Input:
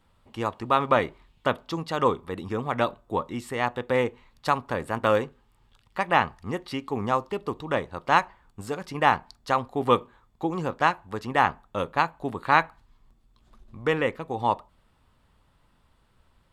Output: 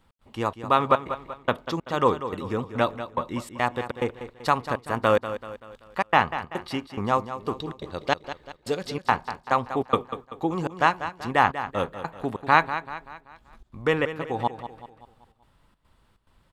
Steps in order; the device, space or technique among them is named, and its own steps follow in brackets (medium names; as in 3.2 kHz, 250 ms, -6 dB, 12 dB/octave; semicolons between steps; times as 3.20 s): 7.54–8.99 s: graphic EQ 500/1000/4000 Hz +5/-7/+9 dB; trance gate with a delay (trance gate "x.xxx.xx" 142 bpm -60 dB; feedback delay 192 ms, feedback 46%, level -11.5 dB); trim +1.5 dB